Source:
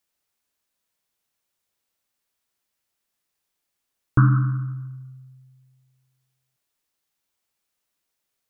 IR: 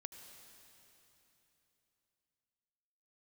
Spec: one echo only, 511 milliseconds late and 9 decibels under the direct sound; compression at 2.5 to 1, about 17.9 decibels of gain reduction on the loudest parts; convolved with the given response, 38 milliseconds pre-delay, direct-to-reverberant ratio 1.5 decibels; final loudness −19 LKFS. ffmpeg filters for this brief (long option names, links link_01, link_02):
-filter_complex "[0:a]acompressor=threshold=-40dB:ratio=2.5,aecho=1:1:511:0.355,asplit=2[link_01][link_02];[1:a]atrim=start_sample=2205,adelay=38[link_03];[link_02][link_03]afir=irnorm=-1:irlink=0,volume=3dB[link_04];[link_01][link_04]amix=inputs=2:normalize=0,volume=17dB"